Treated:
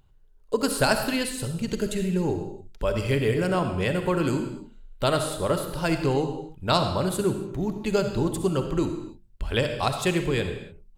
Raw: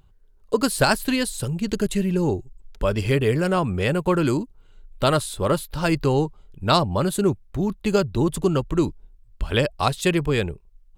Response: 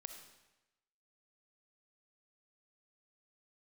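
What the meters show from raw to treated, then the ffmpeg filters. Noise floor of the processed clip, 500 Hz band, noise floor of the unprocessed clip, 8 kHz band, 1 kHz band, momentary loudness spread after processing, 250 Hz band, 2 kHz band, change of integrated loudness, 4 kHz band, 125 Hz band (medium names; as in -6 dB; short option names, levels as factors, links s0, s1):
-54 dBFS, -2.5 dB, -54 dBFS, -2.5 dB, -3.5 dB, 8 LU, -3.5 dB, -3.0 dB, -3.0 dB, -2.5 dB, -4.0 dB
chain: -filter_complex "[0:a]equalizer=f=1200:w=7:g=-3.5,bandreject=f=50:t=h:w=6,bandreject=f=100:t=h:w=6,bandreject=f=150:t=h:w=6,bandreject=f=200:t=h:w=6,bandreject=f=250:t=h:w=6,bandreject=f=300:t=h:w=6,bandreject=f=350:t=h:w=6[s0];[1:a]atrim=start_sample=2205,afade=t=out:st=0.35:d=0.01,atrim=end_sample=15876[s1];[s0][s1]afir=irnorm=-1:irlink=0,volume=1.26"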